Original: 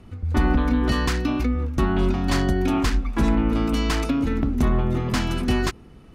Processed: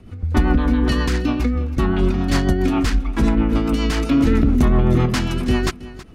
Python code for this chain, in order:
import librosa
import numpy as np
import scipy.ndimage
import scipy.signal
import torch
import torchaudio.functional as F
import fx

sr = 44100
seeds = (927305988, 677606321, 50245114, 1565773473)

y = fx.rotary(x, sr, hz=7.5)
y = y + 10.0 ** (-17.0 / 20.0) * np.pad(y, (int(323 * sr / 1000.0), 0))[:len(y)]
y = fx.env_flatten(y, sr, amount_pct=70, at=(4.11, 5.06))
y = y * 10.0 ** (4.5 / 20.0)